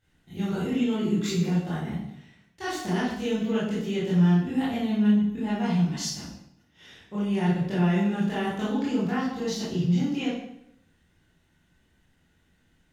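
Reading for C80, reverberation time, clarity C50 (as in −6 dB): 4.5 dB, 0.75 s, 0.0 dB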